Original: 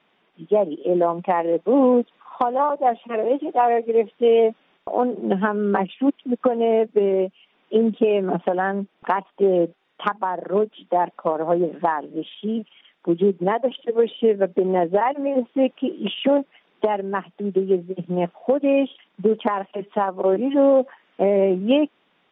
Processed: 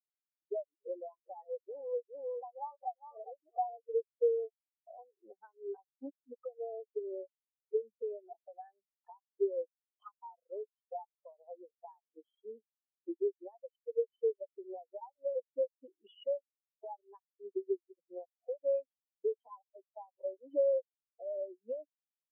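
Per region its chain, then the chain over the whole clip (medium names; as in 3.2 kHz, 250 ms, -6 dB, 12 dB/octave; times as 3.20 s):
0.77–3.77 s: phase dispersion highs, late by 87 ms, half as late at 1.5 kHz + delay 400 ms -7.5 dB
whole clip: high-pass 600 Hz 12 dB/octave; compression 20:1, threshold -31 dBFS; spectral contrast expander 4:1; trim -3 dB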